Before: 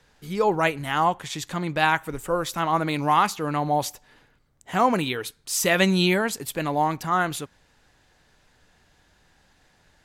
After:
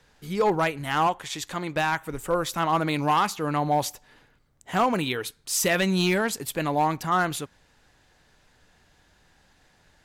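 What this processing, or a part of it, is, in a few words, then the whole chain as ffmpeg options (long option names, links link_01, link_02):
limiter into clipper: -filter_complex "[0:a]alimiter=limit=-10.5dB:level=0:latency=1:release=289,asoftclip=type=hard:threshold=-15.5dB,asettb=1/sr,asplit=3[link_01][link_02][link_03];[link_01]atrim=end=1.074[link_04];[link_02]atrim=start=1.07:end=1.76,asetpts=PTS-STARTPTS,afade=type=in:duration=0.004:curve=qsin,afade=type=out:start_time=0.686:duration=0.004:curve=qsin,equalizer=frequency=150:width=0.91:gain=-7[link_05];[link_03]atrim=start=1.756[link_06];[link_04][link_05]acrossfade=duration=0.004:curve1=hsin:curve2=qsin[link_07];[link_07][link_06]acrossfade=duration=0.004:curve1=qsin:curve2=hsin"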